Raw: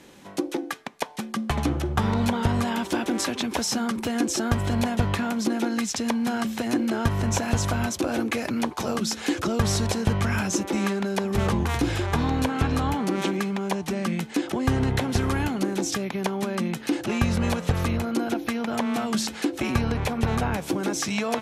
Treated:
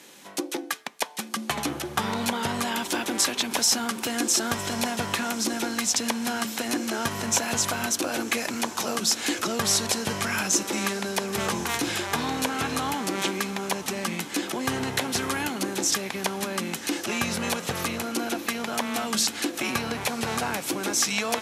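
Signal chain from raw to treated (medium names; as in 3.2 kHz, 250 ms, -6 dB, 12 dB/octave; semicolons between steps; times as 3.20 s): high-pass 130 Hz 12 dB/octave; tilt EQ +2.5 dB/octave; echo that smears into a reverb 1101 ms, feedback 60%, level -15 dB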